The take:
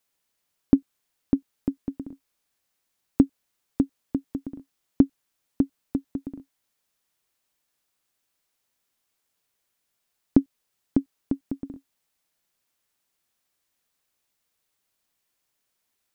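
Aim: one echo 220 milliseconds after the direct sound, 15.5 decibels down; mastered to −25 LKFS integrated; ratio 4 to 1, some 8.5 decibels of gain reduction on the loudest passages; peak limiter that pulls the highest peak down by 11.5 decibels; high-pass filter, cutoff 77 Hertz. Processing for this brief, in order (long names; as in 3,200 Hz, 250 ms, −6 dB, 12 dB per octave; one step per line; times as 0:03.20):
high-pass filter 77 Hz
downward compressor 4 to 1, threshold −22 dBFS
brickwall limiter −20 dBFS
single-tap delay 220 ms −15.5 dB
level +15 dB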